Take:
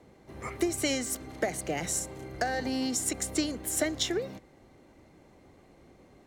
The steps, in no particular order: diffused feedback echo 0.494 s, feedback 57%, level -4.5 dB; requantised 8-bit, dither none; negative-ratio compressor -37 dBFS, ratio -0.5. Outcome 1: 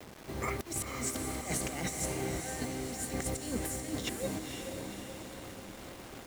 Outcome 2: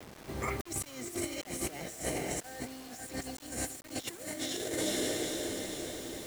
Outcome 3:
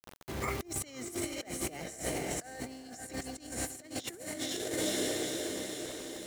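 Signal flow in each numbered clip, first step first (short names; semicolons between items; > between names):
negative-ratio compressor > requantised > diffused feedback echo; diffused feedback echo > negative-ratio compressor > requantised; requantised > diffused feedback echo > negative-ratio compressor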